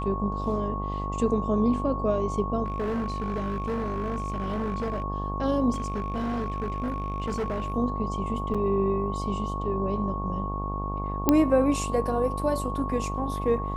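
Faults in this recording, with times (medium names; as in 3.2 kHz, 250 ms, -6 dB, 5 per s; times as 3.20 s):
buzz 50 Hz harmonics 24 -32 dBFS
whine 1.1 kHz -33 dBFS
2.64–5.02 s: clipped -25 dBFS
5.72–7.74 s: clipped -25 dBFS
8.54–8.55 s: dropout 6.1 ms
11.29 s: pop -6 dBFS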